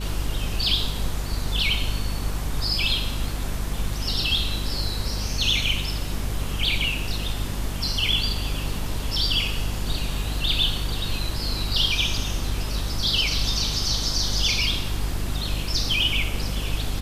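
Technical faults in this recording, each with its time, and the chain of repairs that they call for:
hum 50 Hz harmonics 5 -29 dBFS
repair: de-hum 50 Hz, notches 5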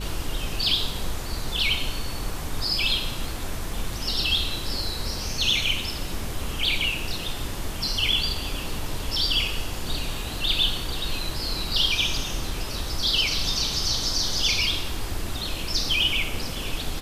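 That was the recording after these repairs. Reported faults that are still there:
none

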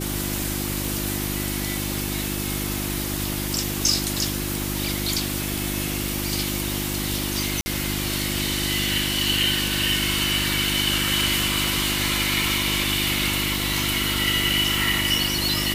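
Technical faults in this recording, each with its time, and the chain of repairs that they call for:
hum 50 Hz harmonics 7 -29 dBFS
0.85 pop
7.61–7.66 gap 50 ms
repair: de-click; de-hum 50 Hz, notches 7; interpolate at 7.61, 50 ms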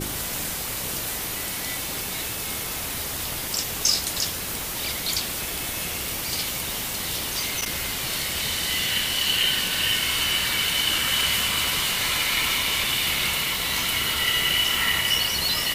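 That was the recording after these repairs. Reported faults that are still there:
none

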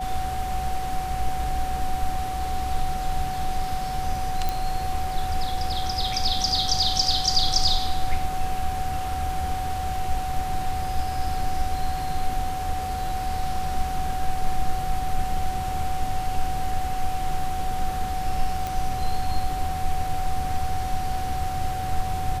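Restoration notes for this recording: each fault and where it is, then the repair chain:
tone 750 Hz -28 dBFS
4.49 pop
18.67 pop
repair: de-click; notch 750 Hz, Q 30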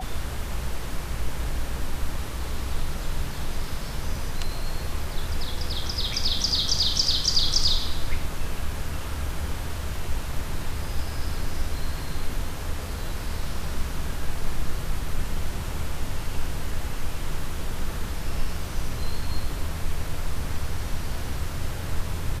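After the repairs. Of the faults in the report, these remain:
none

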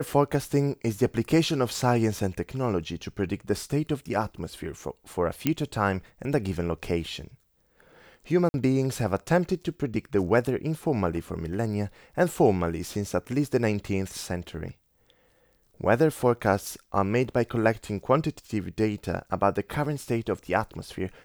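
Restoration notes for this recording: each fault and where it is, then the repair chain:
5.47 pop -9 dBFS
8.49–8.54 gap 51 ms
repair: de-click; interpolate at 8.49, 51 ms

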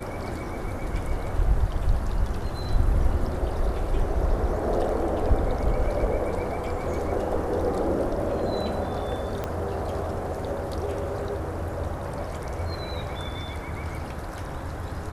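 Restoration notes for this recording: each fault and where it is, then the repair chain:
9.44 pop -16 dBFS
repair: de-click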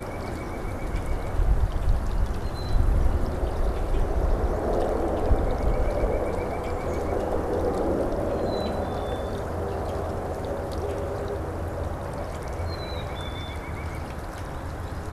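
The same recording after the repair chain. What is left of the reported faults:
9.44 pop

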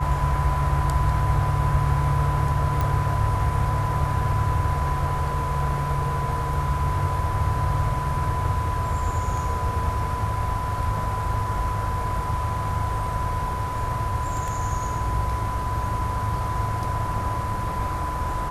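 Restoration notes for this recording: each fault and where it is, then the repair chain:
tone 1000 Hz -28 dBFS
2.81 pop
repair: de-click; notch 1000 Hz, Q 30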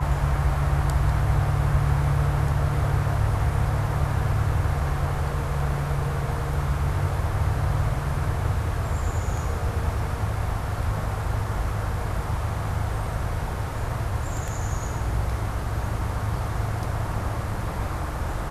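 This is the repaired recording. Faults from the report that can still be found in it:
none

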